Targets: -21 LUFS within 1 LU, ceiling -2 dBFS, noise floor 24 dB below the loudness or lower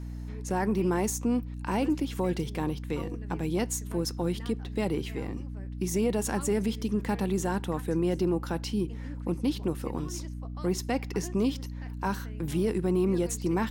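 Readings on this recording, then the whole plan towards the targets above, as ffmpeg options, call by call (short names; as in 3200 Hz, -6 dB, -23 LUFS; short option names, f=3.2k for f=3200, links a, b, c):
hum 60 Hz; harmonics up to 300 Hz; hum level -35 dBFS; loudness -30.5 LUFS; peak -17.5 dBFS; loudness target -21.0 LUFS
-> -af "bandreject=f=60:t=h:w=4,bandreject=f=120:t=h:w=4,bandreject=f=180:t=h:w=4,bandreject=f=240:t=h:w=4,bandreject=f=300:t=h:w=4"
-af "volume=9.5dB"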